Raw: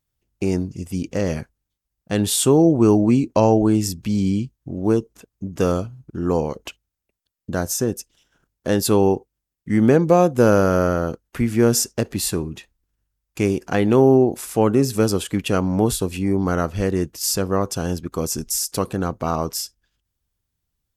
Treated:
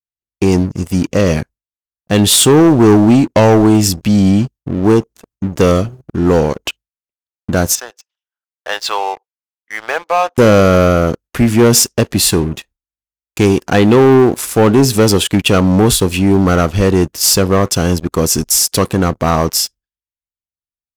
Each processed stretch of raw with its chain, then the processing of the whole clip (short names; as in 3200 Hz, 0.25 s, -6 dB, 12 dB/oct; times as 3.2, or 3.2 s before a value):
7.75–10.38 HPF 770 Hz 24 dB/oct + air absorption 160 m
whole clip: gate with hold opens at -47 dBFS; dynamic EQ 3300 Hz, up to +5 dB, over -40 dBFS, Q 1.3; sample leveller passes 3